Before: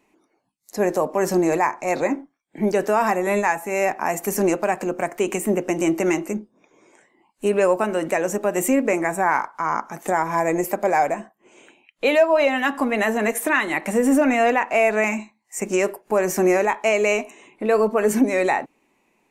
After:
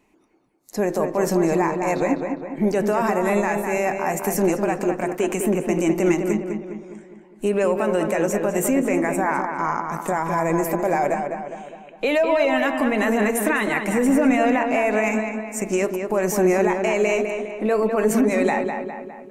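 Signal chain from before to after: low shelf 140 Hz +10.5 dB; limiter -12 dBFS, peak gain reduction 6.5 dB; darkening echo 0.204 s, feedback 53%, low-pass 3100 Hz, level -5.5 dB

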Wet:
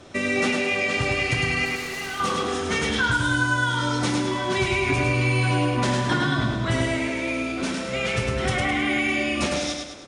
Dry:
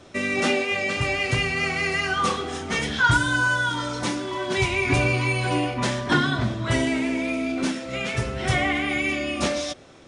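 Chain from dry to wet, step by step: compressor, threshold -23 dBFS, peak gain reduction 9 dB; 1.65–2.2 overloaded stage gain 33 dB; on a send: feedback echo 0.105 s, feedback 47%, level -4 dB; on the sum: gain +2 dB; SBC 192 kbps 48000 Hz

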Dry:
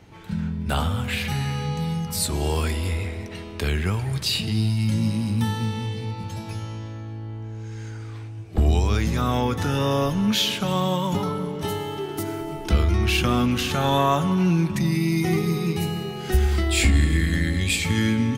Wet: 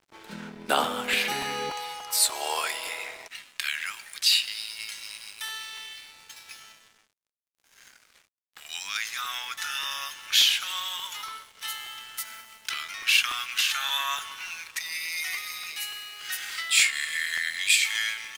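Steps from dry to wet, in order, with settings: HPF 300 Hz 24 dB/oct, from 1.7 s 660 Hz, from 3.28 s 1500 Hz; crossover distortion -50 dBFS; crackling interface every 0.29 s, samples 128, repeat, from 0.55; gain +4 dB

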